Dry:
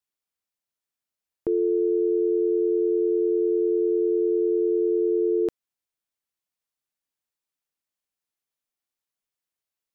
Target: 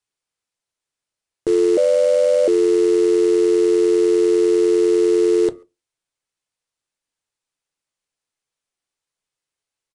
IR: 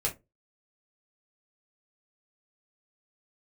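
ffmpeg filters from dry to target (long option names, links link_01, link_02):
-filter_complex "[0:a]asplit=2[link_01][link_02];[link_02]adelay=140,highpass=300,lowpass=3400,asoftclip=type=hard:threshold=-24dB,volume=-27dB[link_03];[link_01][link_03]amix=inputs=2:normalize=0,acrusher=bits=4:mode=log:mix=0:aa=0.000001,asplit=2[link_04][link_05];[1:a]atrim=start_sample=2205[link_06];[link_05][link_06]afir=irnorm=-1:irlink=0,volume=-14dB[link_07];[link_04][link_07]amix=inputs=2:normalize=0,asettb=1/sr,asplit=3[link_08][link_09][link_10];[link_08]atrim=end=1.774[link_11];[link_09]atrim=start=1.77:end=2.48,asetpts=PTS-STARTPTS,afade=type=in:duration=0.004:curve=qsin,afade=type=out:start_time=0.706:duration=0.004:curve=qsin,afreqshift=150[link_12];[link_10]atrim=start=2.476[link_13];[link_11][link_12]acrossfade=duration=0.004:curve1=hsin:curve2=qsin[link_14];[link_14][link_13]acrossfade=duration=0.004:curve1=qsin:curve2=hsin,aresample=22050,aresample=44100,volume=4dB"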